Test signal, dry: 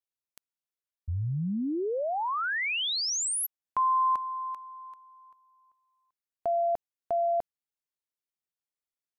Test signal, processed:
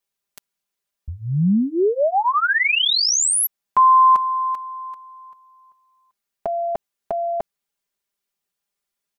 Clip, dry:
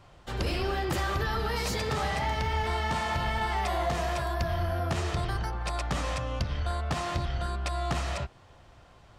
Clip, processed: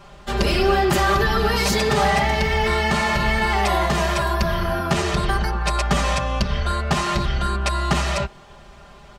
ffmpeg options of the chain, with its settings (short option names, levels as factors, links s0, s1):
-af "aecho=1:1:5:0.93,volume=2.66"